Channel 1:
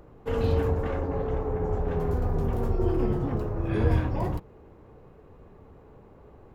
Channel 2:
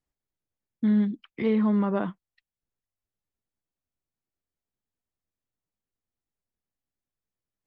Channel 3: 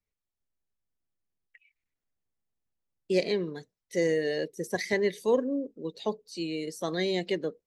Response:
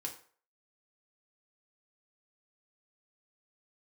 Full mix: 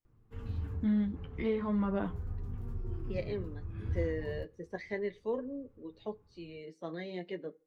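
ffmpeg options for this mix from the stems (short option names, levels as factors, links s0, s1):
-filter_complex "[0:a]firequalizer=gain_entry='entry(100,0);entry(570,-19);entry(1200,-8)':delay=0.05:min_phase=1,adelay=50,volume=0.422[s0];[1:a]volume=0.562,asplit=3[s1][s2][s3];[s2]volume=0.447[s4];[2:a]lowpass=2500,volume=0.447,asplit=2[s5][s6];[s6]volume=0.158[s7];[s3]apad=whole_len=295257[s8];[s0][s8]sidechaincompress=threshold=0.02:ratio=8:attack=16:release=114[s9];[3:a]atrim=start_sample=2205[s10];[s4][s7]amix=inputs=2:normalize=0[s11];[s11][s10]afir=irnorm=-1:irlink=0[s12];[s9][s1][s5][s12]amix=inputs=4:normalize=0,flanger=delay=8.3:depth=3.9:regen=-34:speed=0.36:shape=triangular"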